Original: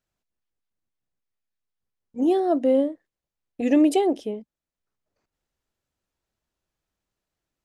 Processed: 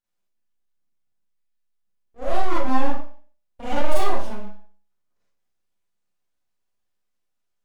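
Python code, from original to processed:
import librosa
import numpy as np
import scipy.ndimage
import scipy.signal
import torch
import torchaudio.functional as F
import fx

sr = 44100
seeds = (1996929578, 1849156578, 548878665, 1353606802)

y = fx.hum_notches(x, sr, base_hz=60, count=9)
y = np.abs(y)
y = fx.rev_schroeder(y, sr, rt60_s=0.44, comb_ms=31, drr_db=-8.0)
y = F.gain(torch.from_numpy(y), -7.5).numpy()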